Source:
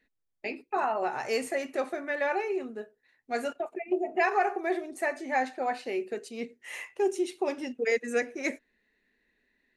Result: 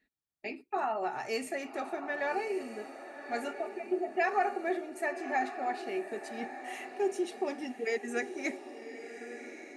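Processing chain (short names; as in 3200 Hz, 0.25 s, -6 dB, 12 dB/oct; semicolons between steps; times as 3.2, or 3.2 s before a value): notch comb 510 Hz; diffused feedback echo 1.162 s, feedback 40%, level -10 dB; gain -3 dB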